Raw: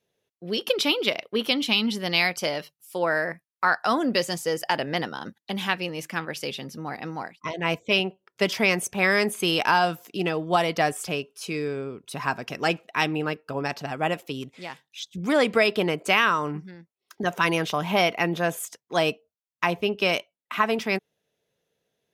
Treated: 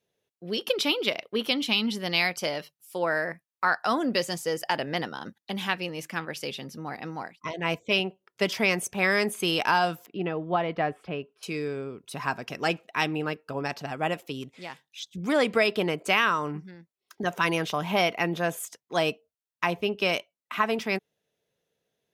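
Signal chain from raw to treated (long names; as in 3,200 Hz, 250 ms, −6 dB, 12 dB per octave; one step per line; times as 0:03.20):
0:10.06–0:11.43: high-frequency loss of the air 440 metres
level −2.5 dB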